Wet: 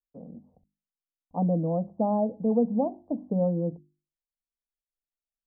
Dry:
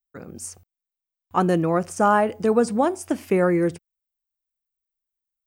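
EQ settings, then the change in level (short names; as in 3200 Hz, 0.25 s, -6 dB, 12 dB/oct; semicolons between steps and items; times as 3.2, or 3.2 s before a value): Gaussian blur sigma 12 samples; notches 50/100/150/200/250/300/350 Hz; fixed phaser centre 370 Hz, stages 6; 0.0 dB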